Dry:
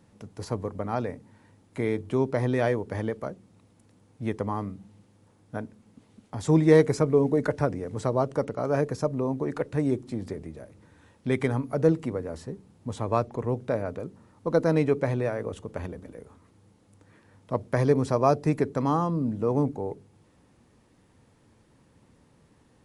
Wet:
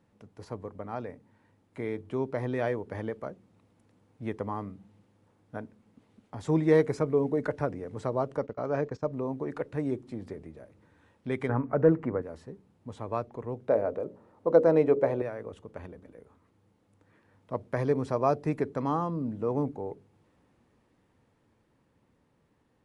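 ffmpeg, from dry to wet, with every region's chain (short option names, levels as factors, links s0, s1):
-filter_complex "[0:a]asettb=1/sr,asplit=3[s0][s1][s2];[s0]atrim=end=8.374[s3];[s1]atrim=start=8.37:end=9.13,asetpts=PTS-STARTPTS,afade=t=in:d=0.004:c=qsin,afade=t=out:st=0.756:d=0.004:c=qsin,lowpass=f=7000:w=0.5412,lowpass=f=7000:w=1.3066,agate=range=0.2:threshold=0.0158:ratio=16:release=100:detection=peak[s4];[s2]atrim=start=9.126[s5];[s3][s4]acrossfade=d=0.004:c1=hsin:c2=qsin[s6];[s6][s5]acrossfade=d=0.004:c1=qsin:c2=hsin,asettb=1/sr,asplit=3[s7][s8][s9];[s7]atrim=end=11.494[s10];[s8]atrim=start=11.49:end=12.22,asetpts=PTS-STARTPTS,afade=t=in:d=0.004:c=qsin,afade=t=out:st=0.726:d=0.004:c=qsin,lowpass=6900,highshelf=f=2500:t=q:w=1.5:g=-13,acontrast=54[s11];[s9]atrim=start=12.216[s12];[s10][s11]acrossfade=d=0.004:c1=hsin:c2=qsin[s13];[s13][s12]acrossfade=d=0.004:c1=qsin:c2=hsin,asettb=1/sr,asplit=3[s14][s15][s16];[s14]atrim=end=13.684[s17];[s15]atrim=start=13.68:end=15.22,asetpts=PTS-STARTPTS,afade=t=in:d=0.004:c=qsin,afade=t=out:st=1.536:d=0.004:c=qsin,equalizer=f=530:t=o:w=2:g=11.5,bandreject=f=60:t=h:w=6,bandreject=f=120:t=h:w=6,bandreject=f=180:t=h:w=6,bandreject=f=240:t=h:w=6,bandreject=f=300:t=h:w=6,bandreject=f=360:t=h:w=6,bandreject=f=420:t=h:w=6,bandreject=f=480:t=h:w=6,bandreject=f=540:t=h:w=6,bandreject=f=600:t=h:w=6[s18];[s16]atrim=start=15.216[s19];[s17][s18]acrossfade=d=0.004:c1=hsin:c2=qsin[s20];[s20][s19]acrossfade=d=0.004:c1=qsin:c2=hsin,bass=f=250:g=-3,treble=f=4000:g=-8,dynaudnorm=f=370:g=13:m=1.58,volume=0.447"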